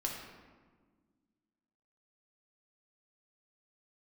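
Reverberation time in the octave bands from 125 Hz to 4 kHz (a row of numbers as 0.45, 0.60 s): 2.0, 2.4, 1.6, 1.4, 1.2, 0.85 s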